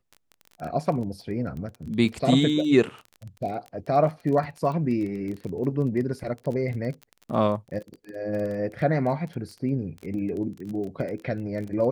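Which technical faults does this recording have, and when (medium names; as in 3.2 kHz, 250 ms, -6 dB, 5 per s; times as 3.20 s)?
crackle 22 per s -32 dBFS
1.70 s: dropout 3.6 ms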